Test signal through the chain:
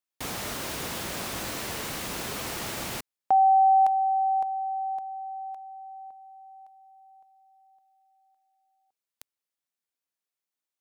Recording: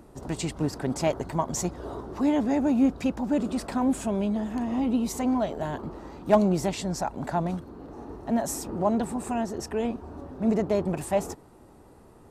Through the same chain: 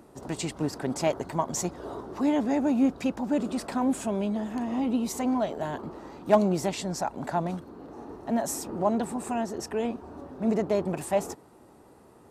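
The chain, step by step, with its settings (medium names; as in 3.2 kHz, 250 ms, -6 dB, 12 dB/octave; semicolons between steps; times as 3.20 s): high-pass 170 Hz 6 dB/octave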